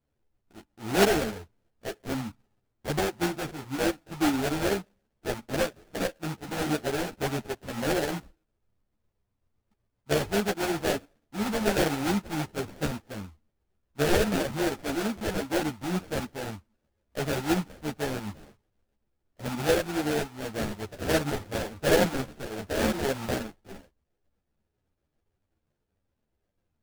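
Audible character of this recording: tremolo saw up 7.7 Hz, depth 40%; aliases and images of a low sample rate 1100 Hz, jitter 20%; a shimmering, thickened sound

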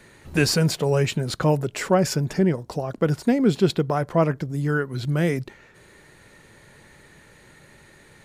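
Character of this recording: noise floor -52 dBFS; spectral tilt -6.0 dB/oct

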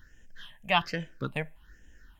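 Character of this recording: phasing stages 6, 1.2 Hz, lowest notch 330–1200 Hz

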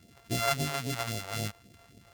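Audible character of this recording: a buzz of ramps at a fixed pitch in blocks of 64 samples; phasing stages 2, 3.7 Hz, lowest notch 200–1200 Hz

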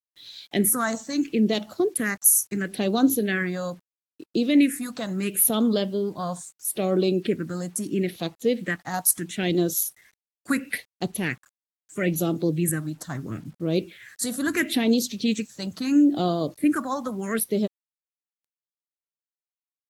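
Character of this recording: phasing stages 4, 0.75 Hz, lowest notch 380–1900 Hz; a quantiser's noise floor 10-bit, dither none; AAC

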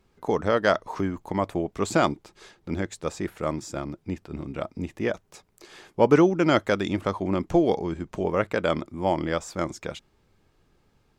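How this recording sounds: noise floor -66 dBFS; spectral tilt -5.5 dB/oct

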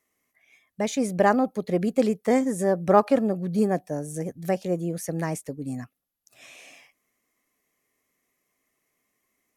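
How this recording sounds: noise floor -77 dBFS; spectral tilt -4.5 dB/oct

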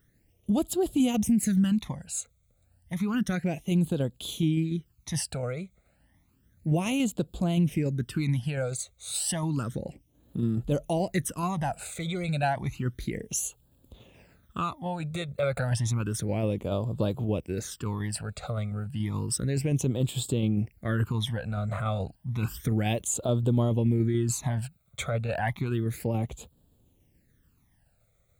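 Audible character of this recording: phasing stages 12, 0.31 Hz, lowest notch 290–2000 Hz; tremolo saw down 7 Hz, depth 30%

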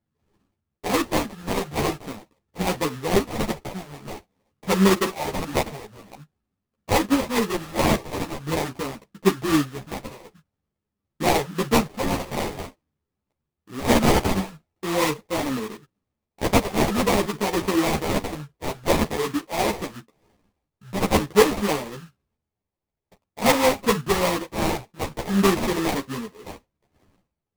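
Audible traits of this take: phasing stages 2, 0.47 Hz, lowest notch 290–4600 Hz; aliases and images of a low sample rate 1500 Hz, jitter 20%; a shimmering, thickened sound

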